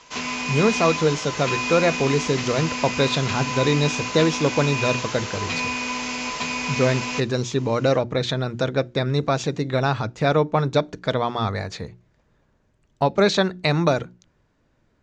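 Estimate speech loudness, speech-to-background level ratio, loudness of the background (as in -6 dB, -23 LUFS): -22.5 LUFS, 3.5 dB, -26.0 LUFS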